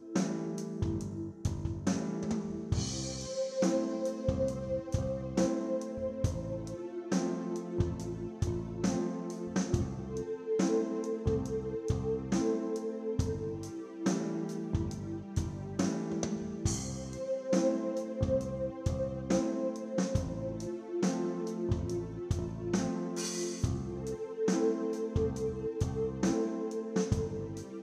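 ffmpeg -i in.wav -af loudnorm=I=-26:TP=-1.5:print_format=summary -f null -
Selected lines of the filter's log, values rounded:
Input Integrated:    -34.4 LUFS
Input True Peak:     -15.2 dBTP
Input LRA:             1.7 LU
Input Threshold:     -44.4 LUFS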